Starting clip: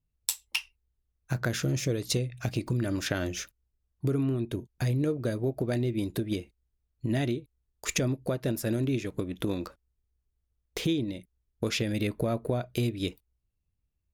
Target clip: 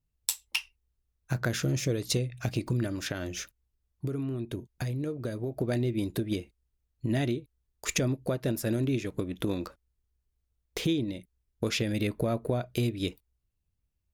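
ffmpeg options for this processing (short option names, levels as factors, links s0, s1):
-filter_complex "[0:a]asplit=3[s0][s1][s2];[s0]afade=t=out:st=2.86:d=0.02[s3];[s1]acompressor=threshold=0.0282:ratio=3,afade=t=in:st=2.86:d=0.02,afade=t=out:st=5.5:d=0.02[s4];[s2]afade=t=in:st=5.5:d=0.02[s5];[s3][s4][s5]amix=inputs=3:normalize=0"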